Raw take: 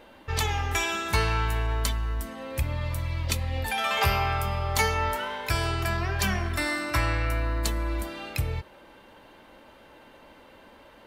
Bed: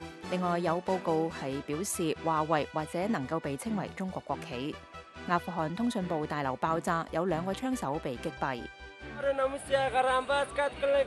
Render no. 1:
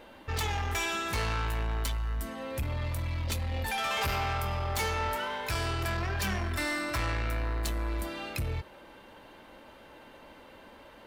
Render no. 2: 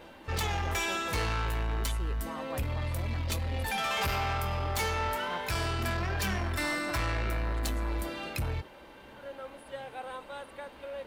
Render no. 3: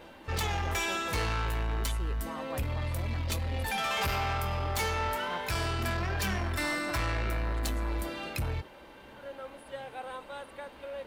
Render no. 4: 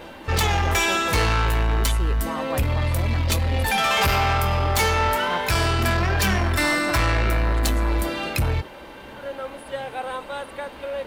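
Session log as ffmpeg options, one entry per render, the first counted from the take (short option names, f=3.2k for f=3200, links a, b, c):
-af "asoftclip=type=tanh:threshold=-27dB"
-filter_complex "[1:a]volume=-14dB[a];[0:a][a]amix=inputs=2:normalize=0"
-af anull
-af "volume=10.5dB"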